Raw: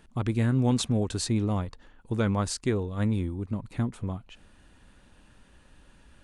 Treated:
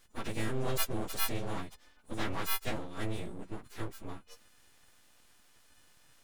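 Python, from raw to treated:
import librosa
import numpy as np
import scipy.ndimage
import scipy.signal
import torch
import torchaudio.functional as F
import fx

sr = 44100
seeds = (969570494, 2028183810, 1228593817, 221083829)

y = fx.freq_snap(x, sr, grid_st=3)
y = np.abs(y)
y = y * librosa.db_to_amplitude(-6.5)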